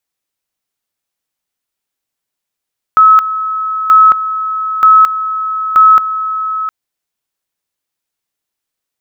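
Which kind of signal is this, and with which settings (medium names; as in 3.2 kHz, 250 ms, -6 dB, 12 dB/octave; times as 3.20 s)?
two-level tone 1.29 kHz -2 dBFS, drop 12 dB, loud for 0.22 s, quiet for 0.71 s, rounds 4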